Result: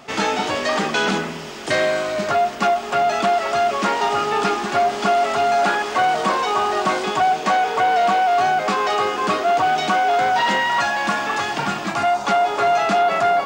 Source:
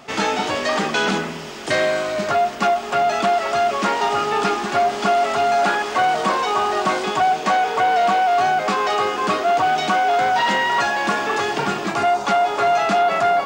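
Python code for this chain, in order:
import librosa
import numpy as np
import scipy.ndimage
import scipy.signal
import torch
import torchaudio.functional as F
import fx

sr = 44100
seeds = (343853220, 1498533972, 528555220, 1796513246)

y = fx.peak_eq(x, sr, hz=410.0, db=-10.5, octaves=0.4, at=(10.6, 12.25))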